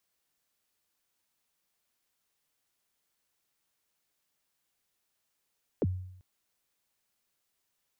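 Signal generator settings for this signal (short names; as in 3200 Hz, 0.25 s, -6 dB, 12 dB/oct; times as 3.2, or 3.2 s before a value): kick drum length 0.39 s, from 560 Hz, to 92 Hz, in 36 ms, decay 0.75 s, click off, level -22.5 dB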